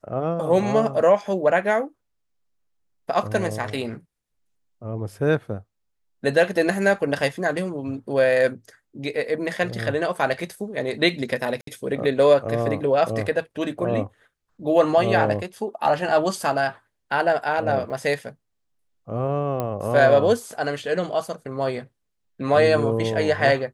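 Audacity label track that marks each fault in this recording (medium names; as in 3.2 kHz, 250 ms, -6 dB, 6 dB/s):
11.610000	11.670000	dropout 63 ms
17.900000	17.900000	dropout 4.2 ms
19.600000	19.600000	pop -13 dBFS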